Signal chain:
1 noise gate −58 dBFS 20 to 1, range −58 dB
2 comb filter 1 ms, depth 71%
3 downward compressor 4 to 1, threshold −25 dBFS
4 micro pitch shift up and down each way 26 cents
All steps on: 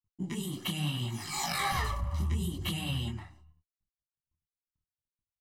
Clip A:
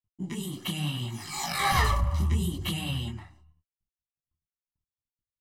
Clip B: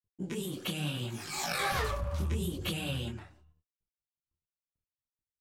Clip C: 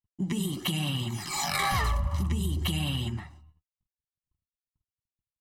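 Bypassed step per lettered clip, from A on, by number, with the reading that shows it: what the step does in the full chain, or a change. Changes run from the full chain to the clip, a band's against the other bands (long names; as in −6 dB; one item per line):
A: 3, average gain reduction 2.5 dB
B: 2, 500 Hz band +8.0 dB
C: 4, change in momentary loudness spread −1 LU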